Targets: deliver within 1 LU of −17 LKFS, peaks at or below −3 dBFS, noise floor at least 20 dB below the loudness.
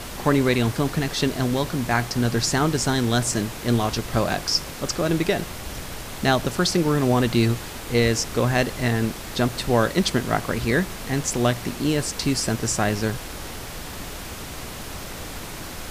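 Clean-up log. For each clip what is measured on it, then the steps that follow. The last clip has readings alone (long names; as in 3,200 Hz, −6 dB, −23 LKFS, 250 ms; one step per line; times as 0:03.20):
background noise floor −35 dBFS; target noise floor −43 dBFS; integrated loudness −23.0 LKFS; sample peak −5.0 dBFS; target loudness −17.0 LKFS
→ noise reduction from a noise print 8 dB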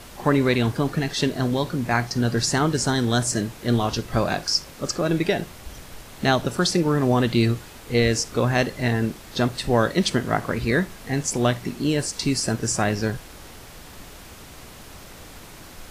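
background noise floor −43 dBFS; integrated loudness −23.0 LKFS; sample peak −5.5 dBFS; target loudness −17.0 LKFS
→ level +6 dB
brickwall limiter −3 dBFS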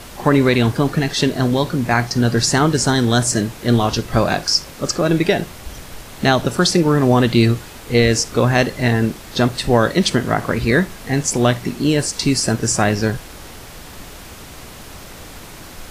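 integrated loudness −17.0 LKFS; sample peak −3.0 dBFS; background noise floor −37 dBFS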